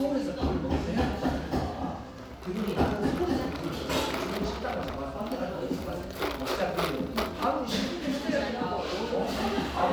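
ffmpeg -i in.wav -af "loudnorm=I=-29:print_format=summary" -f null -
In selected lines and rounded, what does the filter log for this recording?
Input Integrated:    -30.4 LUFS
Input True Peak:     -11.7 dBTP
Input LRA:             1.6 LU
Input Threshold:     -40.5 LUFS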